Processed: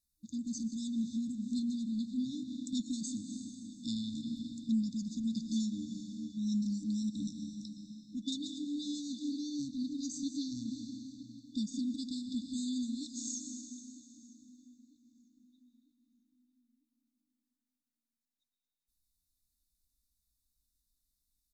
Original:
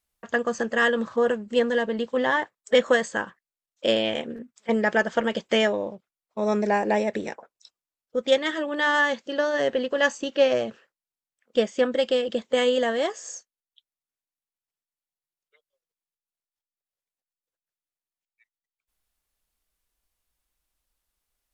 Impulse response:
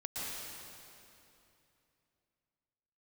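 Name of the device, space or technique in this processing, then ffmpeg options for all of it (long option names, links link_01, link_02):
ducked reverb: -filter_complex "[0:a]asplit=3[link_01][link_02][link_03];[1:a]atrim=start_sample=2205[link_04];[link_02][link_04]afir=irnorm=-1:irlink=0[link_05];[link_03]apad=whole_len=949842[link_06];[link_05][link_06]sidechaincompress=threshold=-34dB:ratio=3:attack=16:release=129,volume=-3.5dB[link_07];[link_01][link_07]amix=inputs=2:normalize=0,afftfilt=real='re*(1-between(b*sr/4096,310,3500))':imag='im*(1-between(b*sr/4096,310,3500))':win_size=4096:overlap=0.75,asplit=2[link_08][link_09];[link_09]adelay=950,lowpass=frequency=2400:poles=1,volume=-17.5dB,asplit=2[link_10][link_11];[link_11]adelay=950,lowpass=frequency=2400:poles=1,volume=0.45,asplit=2[link_12][link_13];[link_13]adelay=950,lowpass=frequency=2400:poles=1,volume=0.45,asplit=2[link_14][link_15];[link_15]adelay=950,lowpass=frequency=2400:poles=1,volume=0.45[link_16];[link_08][link_10][link_12][link_14][link_16]amix=inputs=5:normalize=0,volume=-5dB"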